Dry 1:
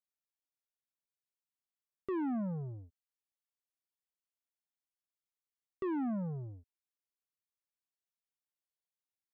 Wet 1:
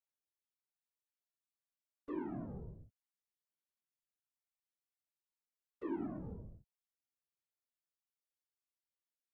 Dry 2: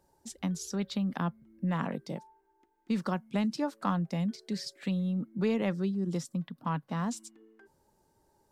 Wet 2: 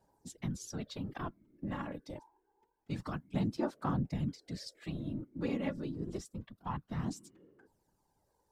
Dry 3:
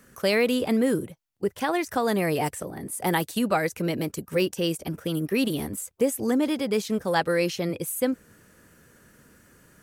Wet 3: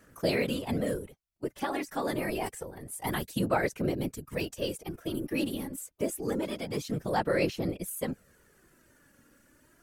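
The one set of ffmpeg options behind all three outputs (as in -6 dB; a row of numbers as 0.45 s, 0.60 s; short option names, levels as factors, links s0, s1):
-af "afftfilt=real='hypot(re,im)*cos(2*PI*random(0))':imag='hypot(re,im)*sin(2*PI*random(1))':win_size=512:overlap=0.75,aphaser=in_gain=1:out_gain=1:delay=3.6:decay=0.41:speed=0.27:type=sinusoidal,volume=0.841"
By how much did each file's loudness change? -7.0 LU, -6.0 LU, -6.5 LU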